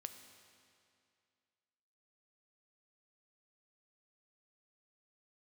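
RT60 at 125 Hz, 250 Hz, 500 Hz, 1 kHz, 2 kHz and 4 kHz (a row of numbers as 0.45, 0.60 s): 2.3, 2.4, 2.4, 2.4, 2.3, 2.2 s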